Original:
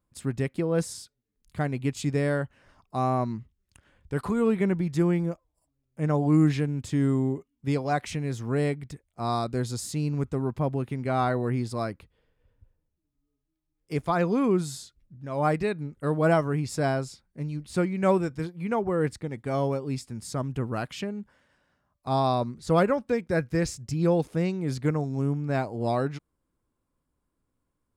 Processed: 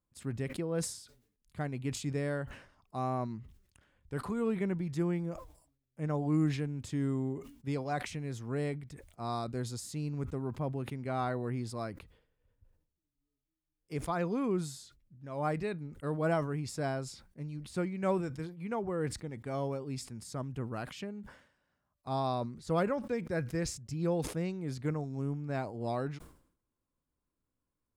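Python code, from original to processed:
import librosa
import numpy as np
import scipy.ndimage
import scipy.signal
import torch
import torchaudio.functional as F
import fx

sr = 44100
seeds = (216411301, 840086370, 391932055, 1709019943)

y = fx.sustainer(x, sr, db_per_s=97.0)
y = y * librosa.db_to_amplitude(-8.5)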